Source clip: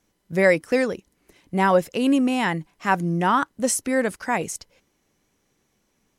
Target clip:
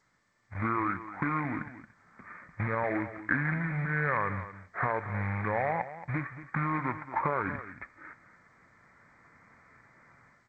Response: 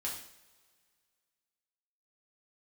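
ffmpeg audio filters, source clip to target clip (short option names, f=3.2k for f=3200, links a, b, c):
-filter_complex "[0:a]highpass=120,equalizer=f=590:w=0.41:g=-3,dynaudnorm=f=430:g=3:m=13dB,alimiter=limit=-12.5dB:level=0:latency=1:release=272,acompressor=threshold=-27dB:ratio=6,aresample=8000,acrusher=bits=3:mode=log:mix=0:aa=0.000001,aresample=44100,crystalizer=i=9:c=0,asetrate=26019,aresample=44100,aecho=1:1:226:0.211,asplit=2[a][b];[1:a]atrim=start_sample=2205,atrim=end_sample=4410[c];[b][c]afir=irnorm=-1:irlink=0,volume=-14dB[d];[a][d]amix=inputs=2:normalize=0,volume=-6dB" -ar 16000 -c:a g722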